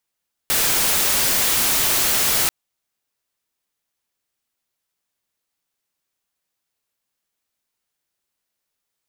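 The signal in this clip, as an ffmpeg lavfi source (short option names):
-f lavfi -i "anoisesrc=c=white:a=0.206:d=1.99:r=44100:seed=1"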